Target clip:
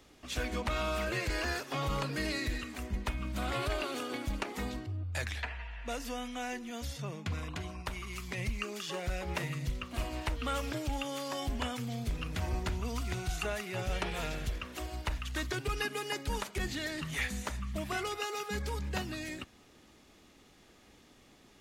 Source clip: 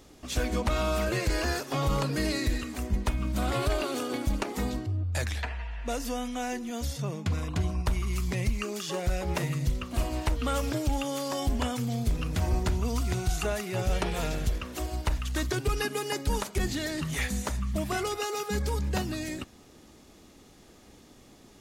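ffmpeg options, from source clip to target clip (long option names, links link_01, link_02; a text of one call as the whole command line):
ffmpeg -i in.wav -filter_complex "[0:a]asettb=1/sr,asplit=3[link_01][link_02][link_03];[link_01]atrim=end=7.554[link_04];[link_02]atrim=start=7.55:end=8.38,asetpts=PTS-STARTPTS,afade=type=in:duration=0.004:curve=qsin,afade=type=out:start_time=0.826:duration=0.004:curve=qsin,lowshelf=frequency=170:gain=-8.5[link_05];[link_03]atrim=start=8.376[link_06];[link_04][link_05]acrossfade=duration=0.004:curve1=hsin:curve2=qsin[link_07];[link_07][link_06]acrossfade=duration=0.004:curve1=qsin:curve2=hsin,acrossover=split=120|3000[link_08][link_09][link_10];[link_09]crystalizer=i=7:c=0[link_11];[link_08][link_11][link_10]amix=inputs=3:normalize=0,volume=-7.5dB" out.wav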